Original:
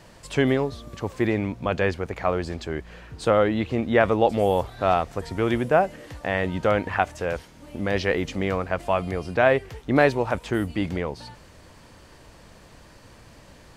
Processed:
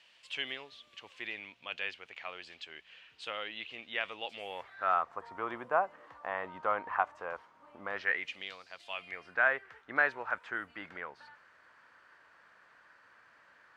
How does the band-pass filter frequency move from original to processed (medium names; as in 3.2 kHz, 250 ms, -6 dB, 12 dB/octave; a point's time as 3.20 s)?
band-pass filter, Q 3.3
4.34 s 2.9 kHz
5.09 s 1.1 kHz
7.86 s 1.1 kHz
8.67 s 5 kHz
9.33 s 1.5 kHz